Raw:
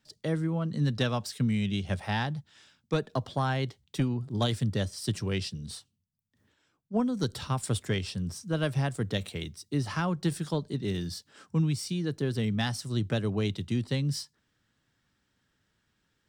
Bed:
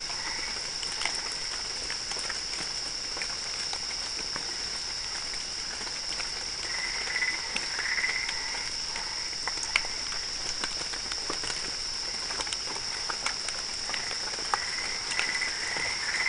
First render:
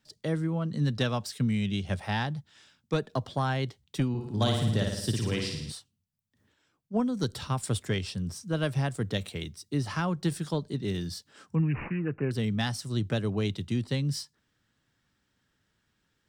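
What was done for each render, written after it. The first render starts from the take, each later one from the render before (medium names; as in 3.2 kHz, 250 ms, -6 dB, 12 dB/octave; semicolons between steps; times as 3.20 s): 4.09–5.72 s: flutter echo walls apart 9.5 m, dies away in 0.87 s; 11.55–12.31 s: careless resampling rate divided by 8×, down none, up filtered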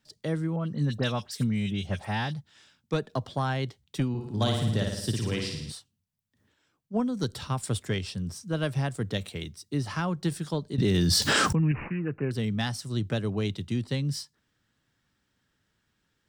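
0.56–2.34 s: phase dispersion highs, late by 59 ms, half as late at 2.8 kHz; 10.78–11.72 s: level flattener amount 100%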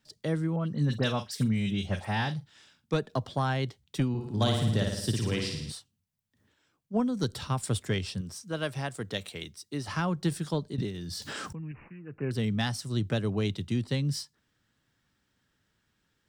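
0.84–2.95 s: doubling 45 ms -13 dB; 8.21–9.88 s: bass shelf 260 Hz -10 dB; 10.64–12.34 s: dip -15 dB, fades 0.28 s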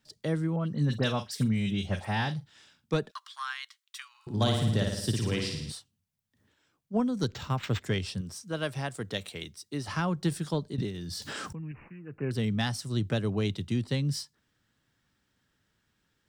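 3.11–4.27 s: Chebyshev high-pass 1.1 kHz, order 5; 7.27–7.83 s: decimation joined by straight lines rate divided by 4×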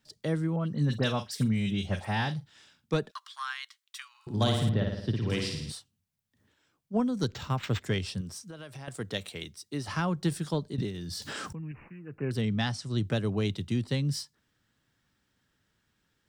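4.69–5.30 s: distance through air 320 m; 8.38–8.88 s: compression 16:1, threshold -39 dBFS; 12.41–12.98 s: low-pass 6.6 kHz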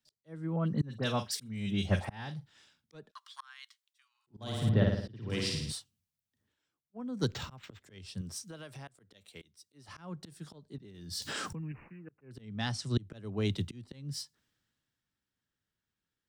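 slow attack 486 ms; three bands expanded up and down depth 40%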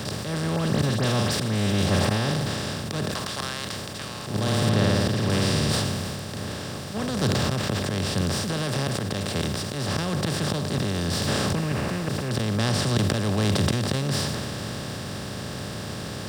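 spectral levelling over time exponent 0.2; decay stretcher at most 22 dB/s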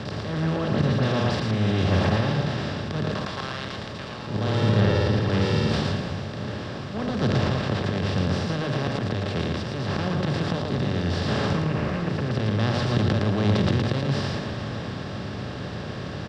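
distance through air 190 m; delay 113 ms -3.5 dB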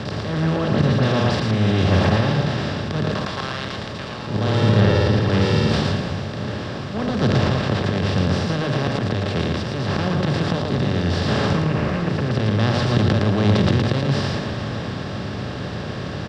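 trim +4.5 dB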